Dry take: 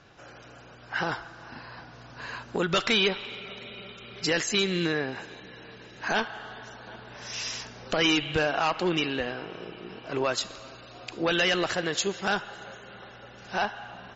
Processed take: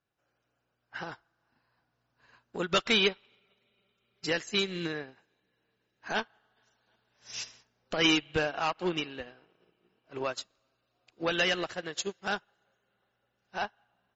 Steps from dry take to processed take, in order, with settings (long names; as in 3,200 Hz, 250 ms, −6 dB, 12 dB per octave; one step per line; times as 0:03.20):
0:06.56–0:07.43: high-shelf EQ 2,500 Hz → 3,300 Hz +10.5 dB
expander for the loud parts 2.5 to 1, over −42 dBFS